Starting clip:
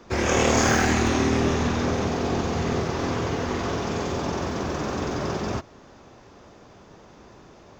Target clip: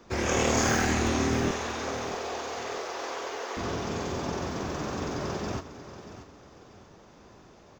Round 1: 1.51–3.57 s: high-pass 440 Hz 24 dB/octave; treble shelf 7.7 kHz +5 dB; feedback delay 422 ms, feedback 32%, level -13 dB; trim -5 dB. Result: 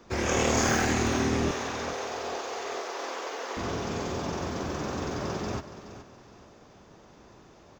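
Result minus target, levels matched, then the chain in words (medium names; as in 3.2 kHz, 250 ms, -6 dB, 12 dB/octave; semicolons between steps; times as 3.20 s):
echo 213 ms early
1.51–3.57 s: high-pass 440 Hz 24 dB/octave; treble shelf 7.7 kHz +5 dB; feedback delay 635 ms, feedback 32%, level -13 dB; trim -5 dB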